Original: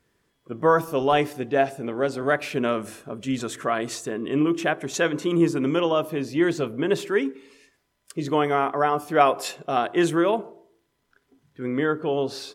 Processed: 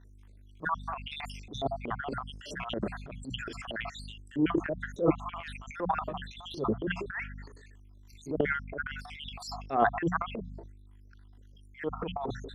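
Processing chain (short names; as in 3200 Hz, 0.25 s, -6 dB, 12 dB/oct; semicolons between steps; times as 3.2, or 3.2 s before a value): random spectral dropouts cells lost 75%; HPF 100 Hz 12 dB/oct; hum 50 Hz, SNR 22 dB; notches 60/120/180 Hz; transient shaper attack -11 dB, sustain +12 dB; treble ducked by the level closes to 1500 Hz, closed at -29.5 dBFS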